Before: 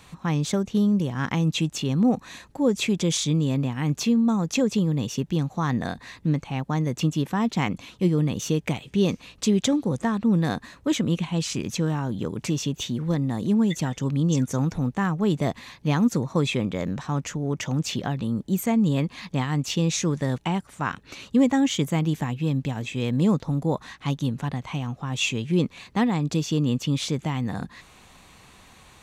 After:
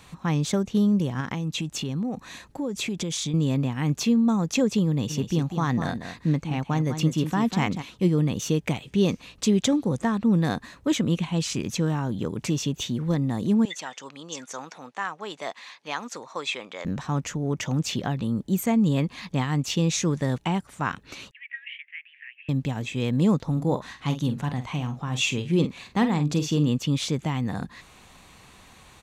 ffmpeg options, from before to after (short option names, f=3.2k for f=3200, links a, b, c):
-filter_complex "[0:a]asettb=1/sr,asplit=3[a][b][c];[a]atrim=end=1.204[d];[b]atrim=start=1.2:end=3.34,asetpts=PTS-STARTPTS,afade=t=in:d=0.004:c=qsin,afade=t=out:st=2.136:d=0.004:c=qsin,acompressor=threshold=-25dB:ratio=6:attack=3.2:release=140:knee=1:detection=peak[e];[c]atrim=start=3.336[f];[d][e]acrossfade=d=0.004:c1=hsin:c2=qsin[g];[g][f]acrossfade=d=0.004:c1=qsin:c2=hsin,asplit=3[h][i][j];[h]afade=t=out:st=5.09:d=0.02[k];[i]aecho=1:1:196:0.355,afade=t=in:st=5.09:d=0.02,afade=t=out:st=7.81:d=0.02[l];[j]afade=t=in:st=7.81:d=0.02[m];[k][l][m]amix=inputs=3:normalize=0,asettb=1/sr,asplit=3[n][o][p];[n]atrim=end=13.654[q];[o]atrim=start=13.65:end=16.85,asetpts=PTS-STARTPTS,afade=t=in:d=0.004:c=qsin,afade=t=out:st=3.196:d=0.004:c=qsin,highpass=760,lowpass=7.4k[r];[p]atrim=start=16.846[s];[q][r]acrossfade=d=0.004:c1=hsin:c2=qsin[t];[t][s]acrossfade=d=0.004:c1=qsin:c2=hsin,asettb=1/sr,asplit=3[u][v][w];[u]atrim=end=21.314[x];[v]atrim=start=21.31:end=22.49,asetpts=PTS-STARTPTS,afade=t=in:d=0.004:c=qsin,afade=t=out:st=1.176:d=0.004:c=qsin,asuperpass=centerf=2200:order=8:qfactor=2.1[y];[w]atrim=start=22.486[z];[x][y]acrossfade=d=0.004:c1=hsin:c2=qsin[aa];[aa][z]acrossfade=d=0.004:c1=qsin:c2=hsin,asettb=1/sr,asplit=3[ab][ac][ad];[ab]atrim=end=23.524[ae];[ac]atrim=start=23.52:end=26.69,asetpts=PTS-STARTPTS,afade=t=in:d=0.004:c=qsin,afade=t=out:st=3.166:d=0.004:c=qsin,asplit=2[af][ag];[ag]adelay=47,volume=-10dB[ah];[af][ah]amix=inputs=2:normalize=0,atrim=end_sample=139797[ai];[ad]atrim=start=26.686[aj];[ae][ai]acrossfade=d=0.004:c1=hsin:c2=qsin[ak];[ak][aj]acrossfade=d=0.004:c1=qsin:c2=hsin"